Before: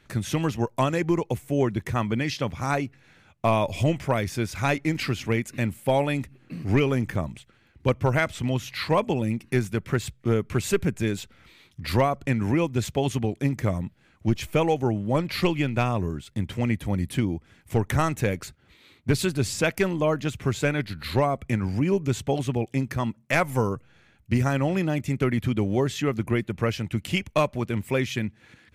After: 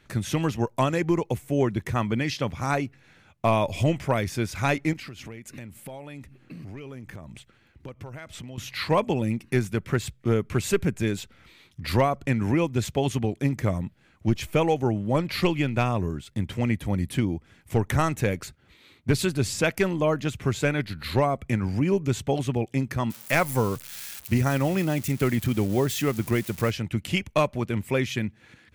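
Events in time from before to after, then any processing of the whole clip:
4.93–8.58 s: compression 10:1, threshold -36 dBFS
23.10–26.71 s: zero-crossing glitches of -27 dBFS

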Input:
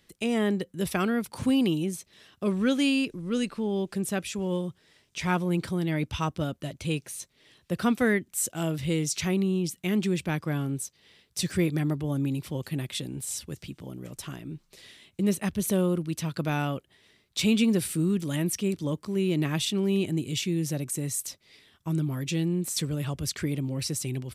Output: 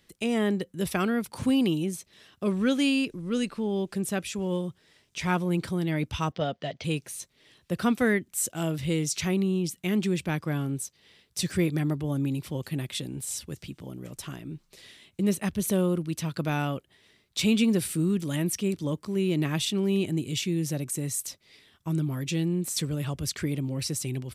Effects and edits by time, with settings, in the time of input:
6.32–6.84 s: cabinet simulation 140–5600 Hz, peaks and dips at 320 Hz -8 dB, 460 Hz +7 dB, 710 Hz +10 dB, 1.9 kHz +7 dB, 3.2 kHz +6 dB, 4.9 kHz +4 dB

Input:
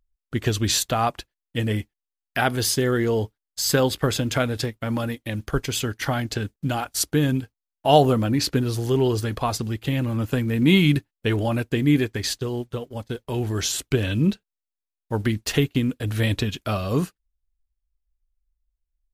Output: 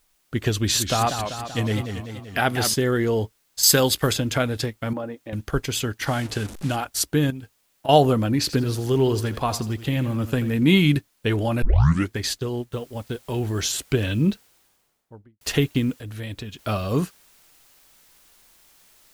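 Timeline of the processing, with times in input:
0.56–2.74 s: modulated delay 193 ms, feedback 61%, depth 209 cents, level -7.5 dB
3.63–4.13 s: treble shelf 3.2 kHz +10.5 dB
4.93–5.33 s: band-pass filter 530 Hz, Q 0.95
6.07–6.76 s: one-bit delta coder 64 kbps, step -32 dBFS
7.30–7.89 s: compression 12:1, threshold -30 dBFS
8.39–10.58 s: bit-crushed delay 83 ms, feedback 35%, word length 7-bit, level -13.5 dB
11.62 s: tape start 0.50 s
12.72 s: noise floor step -67 dB -56 dB
14.20–15.41 s: studio fade out
15.95–16.59 s: compression 1.5:1, threshold -49 dBFS

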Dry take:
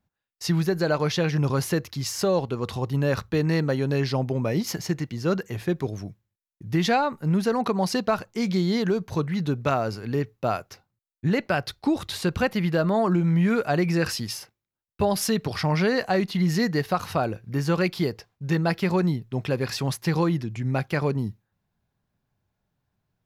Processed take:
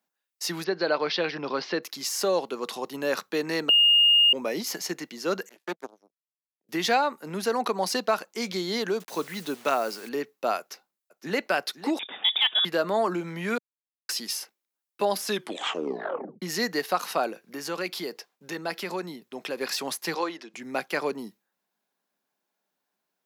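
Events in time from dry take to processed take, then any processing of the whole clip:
0.64–1.83 s: steep low-pass 5 kHz 48 dB/octave
3.69–4.33 s: bleep 2.84 kHz -10.5 dBFS
5.49–6.69 s: power-law waveshaper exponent 3
9.00–10.09 s: word length cut 8-bit, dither none
10.59–11.49 s: echo throw 510 ms, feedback 35%, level -13.5 dB
11.99–12.65 s: frequency inversion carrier 3.6 kHz
13.58–14.09 s: mute
15.24 s: tape stop 1.18 s
17.30–19.58 s: compression 2:1, threshold -27 dBFS
20.14–20.54 s: band-pass 410–6000 Hz
whole clip: de-esser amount 60%; Bessel high-pass 370 Hz, order 8; treble shelf 4.7 kHz +6.5 dB

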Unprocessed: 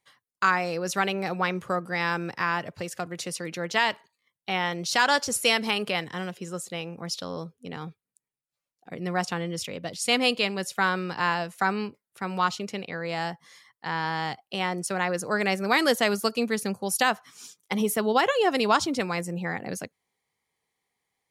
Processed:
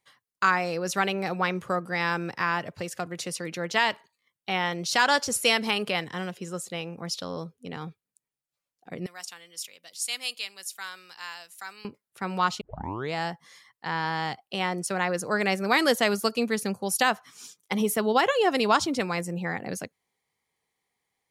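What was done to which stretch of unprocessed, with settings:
9.06–11.85 s: differentiator
12.61 s: tape start 0.52 s

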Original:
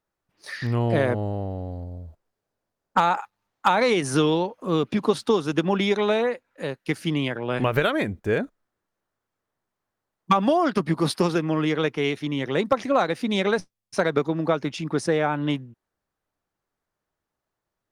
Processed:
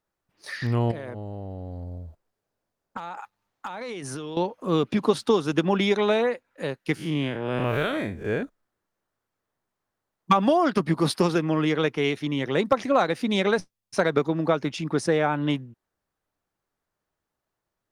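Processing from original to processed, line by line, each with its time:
0.91–4.37 s: compression 16:1, threshold -30 dBFS
6.95–8.43 s: spectral blur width 120 ms

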